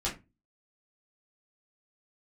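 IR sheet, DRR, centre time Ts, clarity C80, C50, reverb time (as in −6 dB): −7.0 dB, 22 ms, 18.5 dB, 11.5 dB, 0.25 s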